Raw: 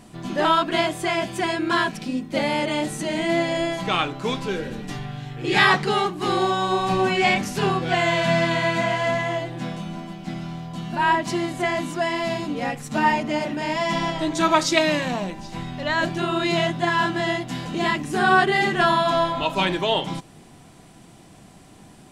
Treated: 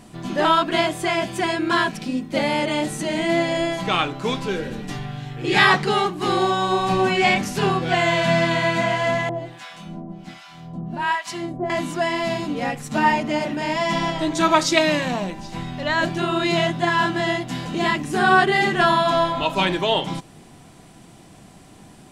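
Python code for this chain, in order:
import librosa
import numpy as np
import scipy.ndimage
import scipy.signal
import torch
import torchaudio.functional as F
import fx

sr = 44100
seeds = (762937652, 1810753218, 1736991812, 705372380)

y = fx.harmonic_tremolo(x, sr, hz=1.3, depth_pct=100, crossover_hz=840.0, at=(9.29, 11.7))
y = y * librosa.db_to_amplitude(1.5)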